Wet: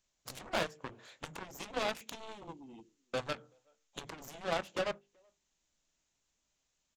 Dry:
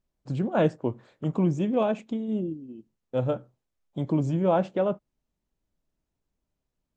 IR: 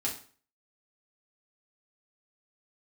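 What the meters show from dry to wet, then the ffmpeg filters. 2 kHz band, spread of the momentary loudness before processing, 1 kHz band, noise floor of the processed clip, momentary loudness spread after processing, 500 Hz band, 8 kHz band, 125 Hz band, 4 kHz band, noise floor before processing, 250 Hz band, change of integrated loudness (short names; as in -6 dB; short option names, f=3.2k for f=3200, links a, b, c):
+1.0 dB, 11 LU, -7.5 dB, -82 dBFS, 14 LU, -12.5 dB, n/a, -22.5 dB, +5.5 dB, -84 dBFS, -21.0 dB, -12.5 dB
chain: -filter_complex "[0:a]equalizer=f=4.9k:t=o:w=0.62:g=-4.5,acompressor=threshold=-32dB:ratio=12,crystalizer=i=9.5:c=0,aresample=16000,volume=30dB,asoftclip=hard,volume=-30dB,aresample=44100,bandreject=f=50:t=h:w=6,bandreject=f=100:t=h:w=6,bandreject=f=150:t=h:w=6,bandreject=f=200:t=h:w=6,bandreject=f=250:t=h:w=6,bandreject=f=300:t=h:w=6,bandreject=f=350:t=h:w=6,bandreject=f=400:t=h:w=6,bandreject=f=450:t=h:w=6,asplit=2[a][b];[b]adelay=18,volume=-13.5dB[c];[a][c]amix=inputs=2:normalize=0,acrossover=split=370|3000[d][e][f];[d]acompressor=threshold=-39dB:ratio=2.5[g];[g][e][f]amix=inputs=3:normalize=0,lowshelf=f=390:g=-6,asplit=2[h][i];[i]adelay=380,highpass=300,lowpass=3.4k,asoftclip=type=hard:threshold=-34dB,volume=-28dB[j];[h][j]amix=inputs=2:normalize=0,aeval=exprs='0.0398*(cos(1*acos(clip(val(0)/0.0398,-1,1)))-cos(1*PI/2))+0.0126*(cos(3*acos(clip(val(0)/0.0398,-1,1)))-cos(3*PI/2))+0.00251*(cos(7*acos(clip(val(0)/0.0398,-1,1)))-cos(7*PI/2))':c=same,volume=6.5dB"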